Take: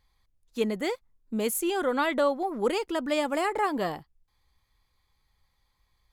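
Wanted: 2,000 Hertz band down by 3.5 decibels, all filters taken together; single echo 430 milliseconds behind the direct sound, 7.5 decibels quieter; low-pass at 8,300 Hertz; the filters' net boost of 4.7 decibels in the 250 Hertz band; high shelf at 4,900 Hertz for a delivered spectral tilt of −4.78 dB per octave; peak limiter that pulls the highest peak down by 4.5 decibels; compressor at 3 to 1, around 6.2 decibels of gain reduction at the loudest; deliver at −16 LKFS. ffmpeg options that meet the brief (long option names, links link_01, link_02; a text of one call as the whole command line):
ffmpeg -i in.wav -af "lowpass=8300,equalizer=frequency=250:width_type=o:gain=6,equalizer=frequency=2000:width_type=o:gain=-5,highshelf=frequency=4900:gain=3,acompressor=threshold=-27dB:ratio=3,alimiter=limit=-22dB:level=0:latency=1,aecho=1:1:430:0.422,volume=15.5dB" out.wav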